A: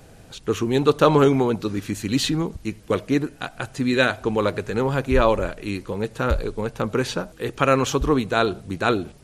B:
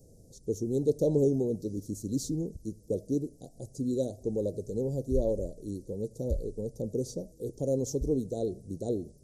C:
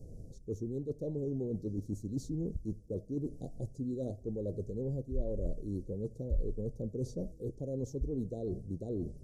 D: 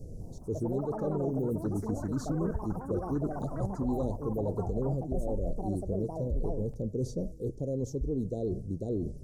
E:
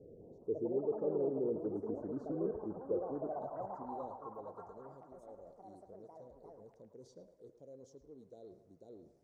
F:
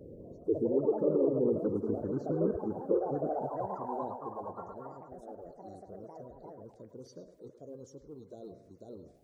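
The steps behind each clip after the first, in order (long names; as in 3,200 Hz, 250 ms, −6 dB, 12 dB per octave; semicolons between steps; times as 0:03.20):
elliptic band-stop filter 540–5,600 Hz, stop band 50 dB; level −8 dB
reversed playback; downward compressor 6 to 1, threshold −39 dBFS, peak gain reduction 17.5 dB; reversed playback; spectral tilt −2.5 dB per octave
brickwall limiter −29.5 dBFS, peak gain reduction 7.5 dB; delay with pitch and tempo change per echo 206 ms, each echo +6 semitones, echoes 3, each echo −6 dB; level +5.5 dB
band-pass filter sweep 430 Hz → 1,900 Hz, 0:02.75–0:04.93; feedback echo with a band-pass in the loop 109 ms, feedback 74%, band-pass 1,200 Hz, level −7 dB
spectral magnitudes quantised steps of 30 dB; level +7.5 dB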